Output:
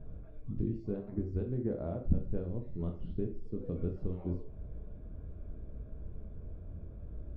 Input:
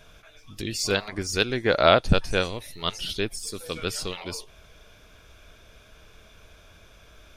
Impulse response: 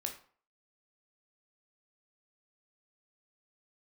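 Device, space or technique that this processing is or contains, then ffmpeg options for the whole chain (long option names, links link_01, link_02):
television next door: -filter_complex "[0:a]acompressor=threshold=-37dB:ratio=4,lowpass=260[link_01];[1:a]atrim=start_sample=2205[link_02];[link_01][link_02]afir=irnorm=-1:irlink=0,volume=11dB"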